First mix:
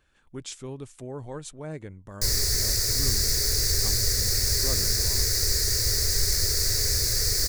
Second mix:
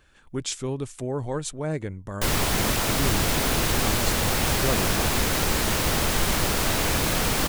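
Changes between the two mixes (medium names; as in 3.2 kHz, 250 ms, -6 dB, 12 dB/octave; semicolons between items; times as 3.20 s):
speech +8.0 dB; background: remove FFT filter 110 Hz 0 dB, 170 Hz -20 dB, 290 Hz -20 dB, 410 Hz -4 dB, 820 Hz -26 dB, 1.2 kHz -20 dB, 1.9 kHz -5 dB, 3.1 kHz -25 dB, 4.6 kHz +9 dB, 9.2 kHz +1 dB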